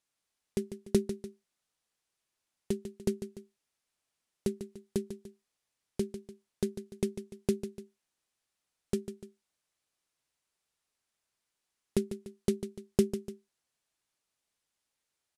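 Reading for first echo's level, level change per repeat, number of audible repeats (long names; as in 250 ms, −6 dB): −10.5 dB, −7.0 dB, 2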